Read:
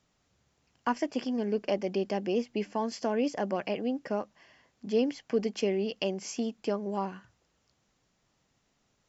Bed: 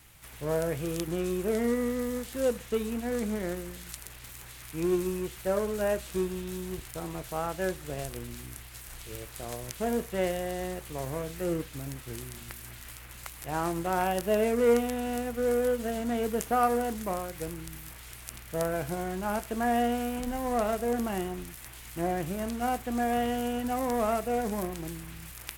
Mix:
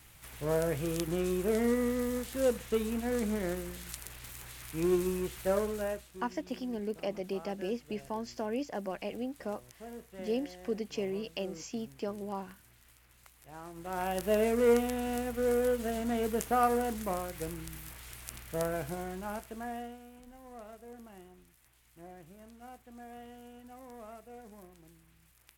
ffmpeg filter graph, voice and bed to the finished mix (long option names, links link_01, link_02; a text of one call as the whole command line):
ffmpeg -i stem1.wav -i stem2.wav -filter_complex "[0:a]adelay=5350,volume=-6dB[link_01];[1:a]volume=13.5dB,afade=type=out:start_time=5.54:duration=0.57:silence=0.16788,afade=type=in:start_time=13.73:duration=0.58:silence=0.188365,afade=type=out:start_time=18.44:duration=1.55:silence=0.11885[link_02];[link_01][link_02]amix=inputs=2:normalize=0" out.wav